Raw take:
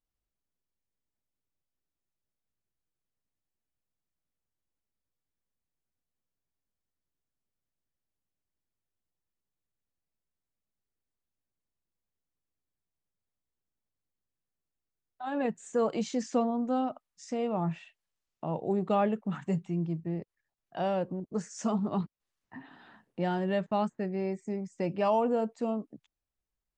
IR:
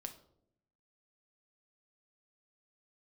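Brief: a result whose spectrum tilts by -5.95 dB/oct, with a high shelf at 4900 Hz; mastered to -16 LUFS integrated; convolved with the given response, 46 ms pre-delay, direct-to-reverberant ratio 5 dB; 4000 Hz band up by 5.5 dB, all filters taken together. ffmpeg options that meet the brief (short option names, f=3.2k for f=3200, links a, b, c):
-filter_complex "[0:a]equalizer=f=4k:t=o:g=4,highshelf=f=4.9k:g=8,asplit=2[a][b];[1:a]atrim=start_sample=2205,adelay=46[c];[b][c]afir=irnorm=-1:irlink=0,volume=-1.5dB[d];[a][d]amix=inputs=2:normalize=0,volume=14dB"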